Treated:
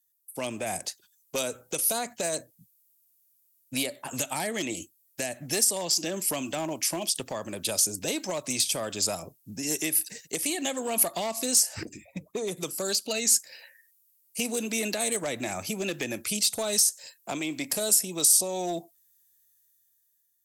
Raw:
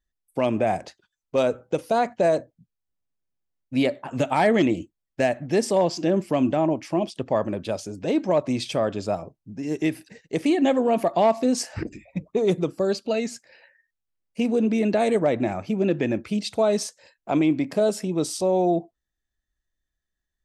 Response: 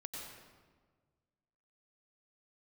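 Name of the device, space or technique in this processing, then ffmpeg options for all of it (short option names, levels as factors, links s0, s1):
FM broadcast chain: -filter_complex "[0:a]highpass=f=71:w=0.5412,highpass=f=71:w=1.3066,dynaudnorm=f=290:g=7:m=2.82,acrossover=split=480|990[s0][s1][s2];[s0]acompressor=threshold=0.0562:ratio=4[s3];[s1]acompressor=threshold=0.0447:ratio=4[s4];[s2]acompressor=threshold=0.0398:ratio=4[s5];[s3][s4][s5]amix=inputs=3:normalize=0,aemphasis=mode=production:type=75fm,alimiter=limit=0.251:level=0:latency=1:release=410,asoftclip=type=hard:threshold=0.158,lowpass=f=15000:w=0.5412,lowpass=f=15000:w=1.3066,aemphasis=mode=production:type=75fm,asettb=1/sr,asplit=3[s6][s7][s8];[s6]atrim=end=11.854[s9];[s7]atrim=start=11.85:end=12.57,asetpts=PTS-STARTPTS,afade=t=in:d=0.004:c=qsin,afade=t=out:st=0.716:d=0.004:c=qsin,highshelf=f=2200:g=-10[s10];[s8]atrim=start=12.566[s11];[s9][s10]acrossfade=d=0.004:c1=hsin:c2=qsin[s12];[s12][s11]acrossfade=d=0.004:c1=qsin:c2=hsin,volume=0.398"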